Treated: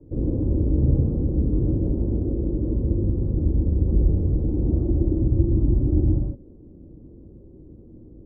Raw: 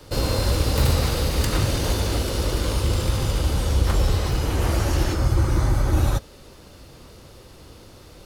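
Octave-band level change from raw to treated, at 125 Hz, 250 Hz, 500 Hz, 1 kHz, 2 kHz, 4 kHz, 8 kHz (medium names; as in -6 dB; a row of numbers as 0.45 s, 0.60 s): 0.0 dB, +4.5 dB, -3.0 dB, under -20 dB, under -40 dB, under -40 dB, under -40 dB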